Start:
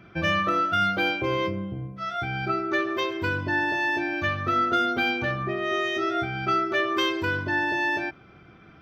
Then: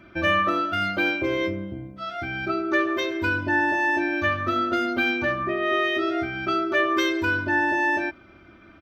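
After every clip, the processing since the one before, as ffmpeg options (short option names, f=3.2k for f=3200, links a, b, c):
-af "aecho=1:1:3.3:0.69"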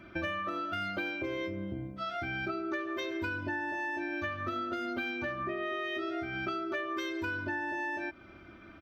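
-af "acompressor=threshold=-30dB:ratio=10,volume=-2dB"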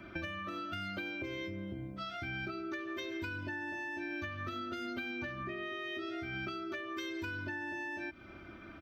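-filter_complex "[0:a]acrossover=split=290|1800[a][b][c];[a]acompressor=threshold=-43dB:ratio=4[d];[b]acompressor=threshold=-49dB:ratio=4[e];[c]acompressor=threshold=-44dB:ratio=4[f];[d][e][f]amix=inputs=3:normalize=0,volume=1.5dB"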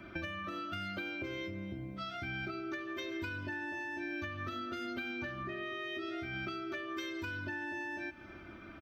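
-af "aecho=1:1:284|568|852:0.126|0.0516|0.0212"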